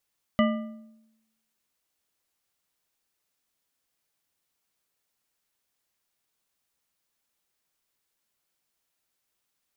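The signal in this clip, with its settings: metal hit bar, lowest mode 222 Hz, decay 0.93 s, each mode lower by 3.5 dB, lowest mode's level -18 dB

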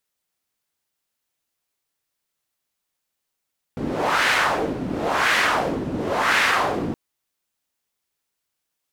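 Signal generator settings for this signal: wind-like swept noise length 3.17 s, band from 240 Hz, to 1.9 kHz, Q 1.7, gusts 3, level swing 8 dB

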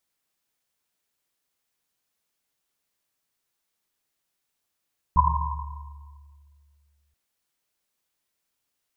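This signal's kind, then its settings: Risset drum length 1.98 s, pitch 72 Hz, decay 2.54 s, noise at 1 kHz, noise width 130 Hz, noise 55%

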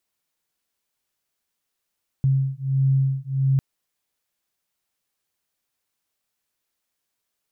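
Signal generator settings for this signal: beating tones 134 Hz, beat 1.5 Hz, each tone -21 dBFS 1.35 s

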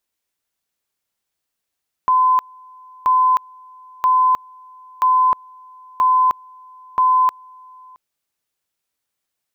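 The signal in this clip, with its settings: two-level tone 1.02 kHz -11 dBFS, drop 28.5 dB, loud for 0.31 s, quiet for 0.67 s, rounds 6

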